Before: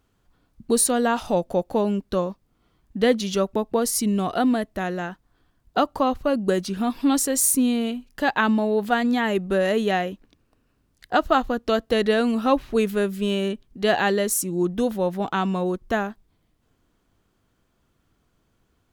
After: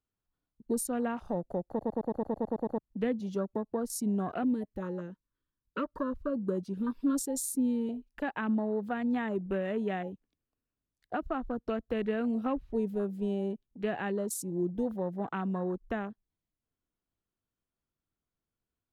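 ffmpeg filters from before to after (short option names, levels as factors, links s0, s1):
-filter_complex "[0:a]asettb=1/sr,asplit=3[s0][s1][s2];[s0]atrim=end=4.434[s3];[s1]atrim=start=4.43:end=7.89,asetpts=PTS-STARTPTS,afade=t=in:d=0.004:c=qsin,afade=t=out:st=3.456:d=0.004:c=qsin,asuperstop=centerf=750:order=20:qfactor=2.6[s4];[s2]atrim=start=7.886[s5];[s3][s4]acrossfade=d=0.004:c1=hsin:c2=qsin[s6];[s6][s5]acrossfade=d=0.004:c1=qsin:c2=hsin,asplit=11[s7][s8][s9][s10][s11][s12][s13][s14][s15][s16][s17];[s7]atrim=end=1.792[s18];[s8]atrim=start=1.678:end=1.792[s19];[s9]atrim=start=1.678:end=1.792[s20];[s10]atrim=start=1.678:end=1.792[s21];[s11]atrim=start=1.678:end=1.792[s22];[s12]atrim=start=1.678:end=1.792[s23];[s13]atrim=start=1.678:end=1.792[s24];[s14]atrim=start=1.678:end=1.792[s25];[s15]atrim=start=1.678:end=1.792[s26];[s16]atrim=start=1.678:end=1.792[s27];[s17]atrim=start=2.778[s28];[s18][s19]acrossfade=d=0.004:c1=hsin:c2=hsin[s29];[s29][s20]acrossfade=d=0.004:c1=hsin:c2=hsin[s30];[s30][s21]acrossfade=d=0.004:c1=hsin:c2=hsin[s31];[s31][s22]acrossfade=d=0.004:c1=hsin:c2=hsin[s32];[s32][s23]acrossfade=d=0.004:c1=hsin:c2=hsin[s33];[s33][s24]acrossfade=d=0.004:c1=hsin:c2=hsin[s34];[s34][s25]acrossfade=d=0.004:c1=hsin:c2=hsin[s35];[s35][s26]acrossfade=d=0.004:c1=hsin:c2=hsin[s36];[s36][s27]acrossfade=d=0.004:c1=hsin:c2=hsin[s37];[s37][s28]acrossfade=d=0.004:c1=hsin:c2=hsin,afwtdn=0.0316,acrossover=split=320[s38][s39];[s39]acompressor=threshold=0.0501:ratio=4[s40];[s38][s40]amix=inputs=2:normalize=0,volume=0.422"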